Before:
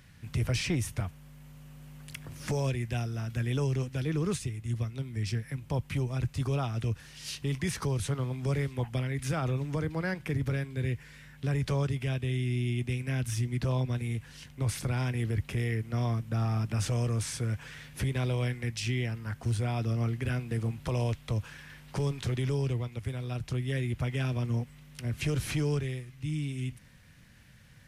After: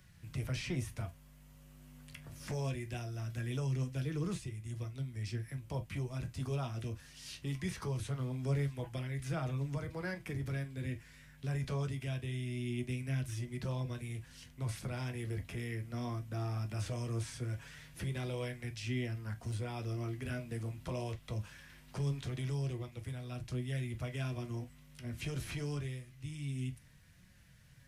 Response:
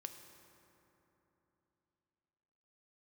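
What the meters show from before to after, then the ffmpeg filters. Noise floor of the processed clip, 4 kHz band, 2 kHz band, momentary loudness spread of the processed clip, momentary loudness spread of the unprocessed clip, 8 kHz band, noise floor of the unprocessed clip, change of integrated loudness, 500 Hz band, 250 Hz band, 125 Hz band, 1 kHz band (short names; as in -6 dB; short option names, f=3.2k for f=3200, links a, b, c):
-60 dBFS, -7.5 dB, -7.0 dB, 8 LU, 8 LU, -9.0 dB, -54 dBFS, -7.5 dB, -7.5 dB, -7.0 dB, -7.5 dB, -7.5 dB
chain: -filter_complex "[0:a]acrossover=split=120|4300[a][b][c];[a]asoftclip=type=tanh:threshold=-38dB[d];[b]flanger=delay=5.3:depth=7.8:regen=46:speed=0.22:shape=triangular[e];[c]alimiter=level_in=15dB:limit=-24dB:level=0:latency=1:release=151,volume=-15dB[f];[d][e][f]amix=inputs=3:normalize=0[g];[1:a]atrim=start_sample=2205,atrim=end_sample=4410,asetrate=83790,aresample=44100[h];[g][h]afir=irnorm=-1:irlink=0,volume=7dB"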